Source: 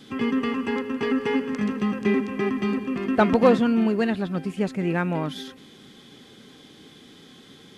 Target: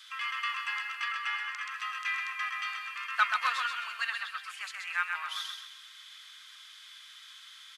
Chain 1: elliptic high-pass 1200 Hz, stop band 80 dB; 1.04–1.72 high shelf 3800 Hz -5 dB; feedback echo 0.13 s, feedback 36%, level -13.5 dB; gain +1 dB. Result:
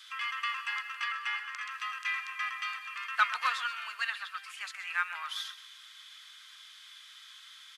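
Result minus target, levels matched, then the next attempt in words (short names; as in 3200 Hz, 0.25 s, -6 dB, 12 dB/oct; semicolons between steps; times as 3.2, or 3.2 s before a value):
echo-to-direct -8.5 dB
elliptic high-pass 1200 Hz, stop band 80 dB; 1.04–1.72 high shelf 3800 Hz -5 dB; feedback echo 0.13 s, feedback 36%, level -5 dB; gain +1 dB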